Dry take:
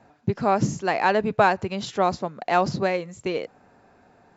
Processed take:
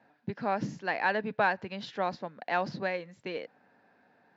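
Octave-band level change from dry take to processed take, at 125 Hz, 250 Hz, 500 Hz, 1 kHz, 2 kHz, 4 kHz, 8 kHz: -12.5 dB, -10.0 dB, -10.0 dB, -9.0 dB, -4.0 dB, -8.0 dB, no reading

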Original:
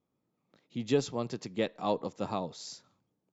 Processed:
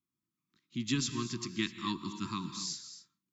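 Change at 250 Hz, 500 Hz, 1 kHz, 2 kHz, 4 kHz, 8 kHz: 0.0 dB, -15.5 dB, -5.0 dB, +3.0 dB, +5.5 dB, no reading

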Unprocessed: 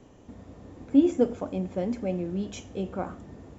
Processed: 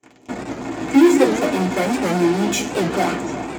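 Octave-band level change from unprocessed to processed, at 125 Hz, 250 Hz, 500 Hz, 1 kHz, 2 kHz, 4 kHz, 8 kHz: +9.0 dB, +9.5 dB, +10.5 dB, +18.0 dB, +24.0 dB, +20.0 dB, no reading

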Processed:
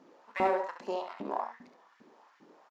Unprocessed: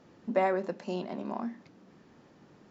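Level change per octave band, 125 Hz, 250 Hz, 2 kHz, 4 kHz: -11.0 dB, -7.0 dB, 0.0 dB, -0.5 dB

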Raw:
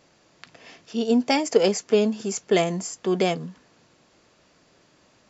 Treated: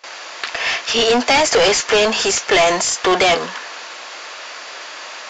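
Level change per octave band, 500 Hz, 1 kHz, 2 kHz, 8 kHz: +6.0 dB, +12.5 dB, +16.5 dB, no reading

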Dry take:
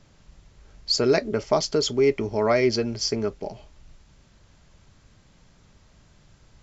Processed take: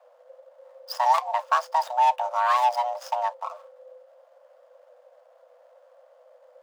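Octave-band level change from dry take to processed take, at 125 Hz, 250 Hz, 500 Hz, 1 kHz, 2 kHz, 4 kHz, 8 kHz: under -40 dB, under -40 dB, -11.0 dB, +13.0 dB, -1.0 dB, -11.0 dB, no reading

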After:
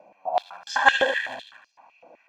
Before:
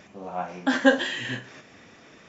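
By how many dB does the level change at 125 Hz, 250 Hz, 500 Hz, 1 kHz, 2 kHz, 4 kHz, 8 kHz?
under -15 dB, -19.0 dB, -1.5 dB, +7.5 dB, +4.5 dB, +1.5 dB, no reading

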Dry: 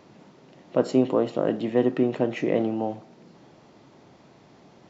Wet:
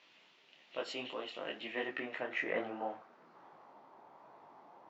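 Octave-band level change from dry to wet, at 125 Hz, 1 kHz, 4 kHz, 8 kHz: -27.5 dB, -9.5 dB, -1.0 dB, no reading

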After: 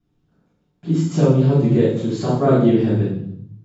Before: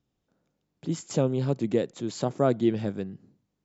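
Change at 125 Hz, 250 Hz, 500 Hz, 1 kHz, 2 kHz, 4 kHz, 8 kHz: +14.0 dB, +11.0 dB, +8.5 dB, +8.0 dB, +7.5 dB, +5.0 dB, no reading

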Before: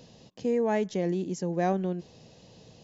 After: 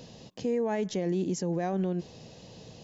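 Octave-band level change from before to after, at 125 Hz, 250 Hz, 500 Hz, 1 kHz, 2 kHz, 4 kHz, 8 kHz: 0.0 dB, -0.5 dB, -2.0 dB, -4.5 dB, -3.5 dB, +3.0 dB, no reading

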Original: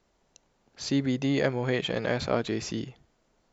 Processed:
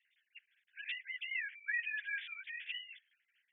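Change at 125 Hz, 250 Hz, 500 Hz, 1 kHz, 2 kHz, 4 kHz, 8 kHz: under -40 dB, under -40 dB, under -40 dB, under -30 dB, -1.0 dB, -10.0 dB, no reading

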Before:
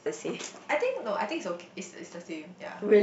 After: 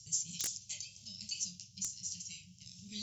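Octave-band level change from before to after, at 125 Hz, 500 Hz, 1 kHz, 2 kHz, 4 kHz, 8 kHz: -8.5 dB, under -40 dB, under -30 dB, -20.0 dB, +1.5 dB, no reading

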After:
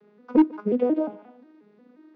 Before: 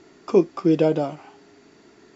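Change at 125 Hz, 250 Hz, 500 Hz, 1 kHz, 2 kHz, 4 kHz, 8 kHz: under -10 dB, 0.0 dB, -5.5 dB, -2.0 dB, -5.0 dB, under -10 dB, no reading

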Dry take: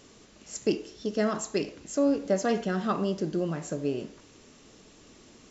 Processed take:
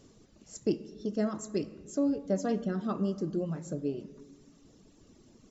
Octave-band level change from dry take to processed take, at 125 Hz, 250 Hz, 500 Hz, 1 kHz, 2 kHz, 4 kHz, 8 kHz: -1.5 dB, -2.0 dB, -5.0 dB, -8.0 dB, -11.0 dB, -9.5 dB, no reading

